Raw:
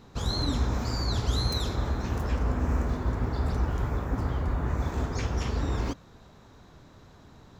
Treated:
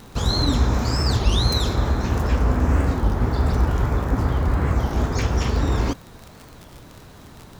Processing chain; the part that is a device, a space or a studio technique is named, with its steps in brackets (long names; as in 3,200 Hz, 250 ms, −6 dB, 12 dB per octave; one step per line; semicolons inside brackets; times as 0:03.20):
warped LP (wow of a warped record 33 1/3 rpm, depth 250 cents; surface crackle 40 per second −36 dBFS; pink noise bed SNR 32 dB)
level +8 dB